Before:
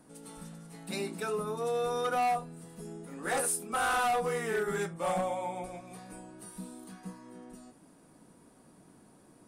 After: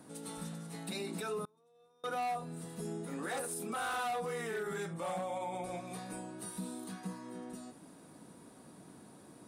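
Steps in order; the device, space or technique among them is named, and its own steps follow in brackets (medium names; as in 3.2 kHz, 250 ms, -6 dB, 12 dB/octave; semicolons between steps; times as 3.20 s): broadcast voice chain (high-pass 74 Hz 12 dB/octave; de-esser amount 65%; compression, threshold -35 dBFS, peak gain reduction 8 dB; peaking EQ 3.8 kHz +5.5 dB 0.21 oct; peak limiter -34.5 dBFS, peak gain reduction 8.5 dB); 1.45–2.04 s: gate -36 dBFS, range -31 dB; trim +3.5 dB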